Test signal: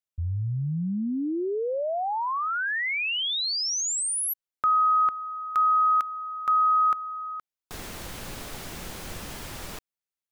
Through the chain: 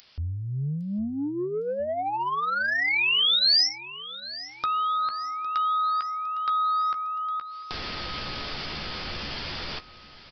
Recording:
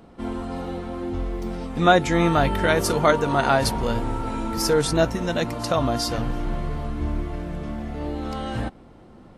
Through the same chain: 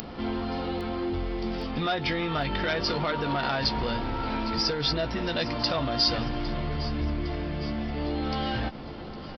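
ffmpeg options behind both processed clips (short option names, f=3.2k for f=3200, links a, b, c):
-filter_complex "[0:a]bandreject=f=3.9k:w=18,alimiter=limit=-15.5dB:level=0:latency=1:release=163,acompressor=threshold=-27dB:ratio=3:attack=31:release=45:knee=6,asplit=2[a][b];[b]adelay=14,volume=-9.5dB[c];[a][c]amix=inputs=2:normalize=0,acompressor=mode=upward:threshold=-31dB:ratio=2.5:attack=3.2:release=86:knee=2.83:detection=peak,aresample=11025,asoftclip=type=tanh:threshold=-21dB,aresample=44100,crystalizer=i=4.5:c=0,asplit=2[d][e];[e]aecho=0:1:808|1616|2424|3232|4040:0.141|0.0749|0.0397|0.021|0.0111[f];[d][f]amix=inputs=2:normalize=0"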